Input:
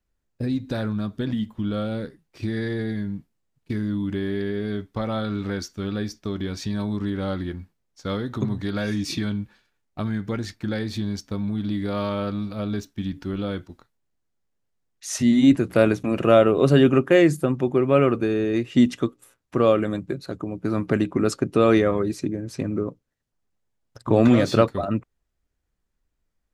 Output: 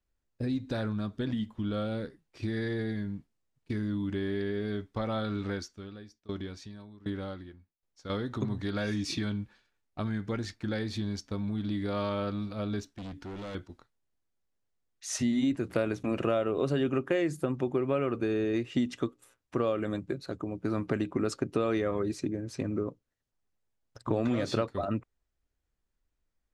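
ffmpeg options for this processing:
-filter_complex "[0:a]asettb=1/sr,asplit=3[a][b][c];[a]atrim=end=5.524[d];[b]atrim=start=5.52:end=8.1,asetpts=PTS-STARTPTS,afade=t=in:d=0.004:c=qsin,afade=t=out:st=2.576:d=0.004:c=qsin,aeval=exprs='val(0)*pow(10,-22*if(lt(mod(1.3*n/s,1),2*abs(1.3)/1000),1-mod(1.3*n/s,1)/(2*abs(1.3)/1000),(mod(1.3*n/s,1)-2*abs(1.3)/1000)/(1-2*abs(1.3)/1000))/20)':c=same[e];[c]atrim=start=8.096[f];[d][e]acrossfade=d=0.004:c1=hsin:c2=qsin[g];[g][f]acrossfade=d=0.004:c1=qsin:c2=hsin,asettb=1/sr,asplit=3[h][i][j];[h]atrim=end=12.904[k];[i]atrim=start=12.9:end=13.55,asetpts=PTS-STARTPTS,afade=t=in:d=0.004:c=qsin,afade=t=out:st=0.646:d=0.004:c=qsin,volume=32.5dB,asoftclip=hard,volume=-32.5dB[l];[j]atrim=start=13.546[m];[k][l]acrossfade=d=0.004:c1=hsin:c2=qsin[n];[n][m]acrossfade=d=0.004:c1=qsin:c2=hsin,lowpass=9.7k,equalizer=f=170:t=o:w=0.77:g=-3.5,acompressor=threshold=-20dB:ratio=6,volume=-4.5dB"

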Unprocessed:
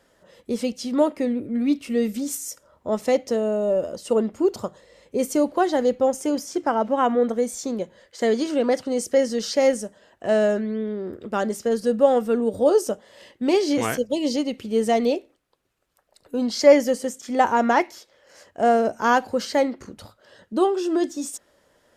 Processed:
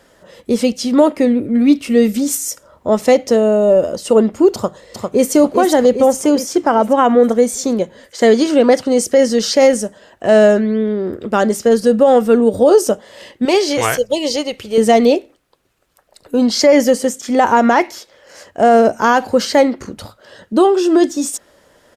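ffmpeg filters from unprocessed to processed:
-filter_complex "[0:a]asplit=2[a][b];[b]afade=t=in:st=4.54:d=0.01,afade=t=out:st=5.33:d=0.01,aecho=0:1:400|800|1200|1600|2000|2400|2800:0.630957|0.347027|0.190865|0.104976|0.0577365|0.0317551|0.0174653[c];[a][c]amix=inputs=2:normalize=0,asettb=1/sr,asplit=3[d][e][f];[d]atrim=end=13.454[g];[e]atrim=start=13.45:end=14.78,asetpts=PTS-STARTPTS,afade=t=in:d=0.004:c=qsin,afade=t=out:st=1.326:d=0.004:c=qsin,equalizer=f=240:w=1.6:g=-14[h];[f]atrim=start=14.776[i];[g][h]acrossfade=d=0.004:c1=hsin:c2=qsin[j];[j][i]acrossfade=d=0.004:c1=qsin:c2=hsin,alimiter=level_in=11.5dB:limit=-1dB:release=50:level=0:latency=1,volume=-1dB"

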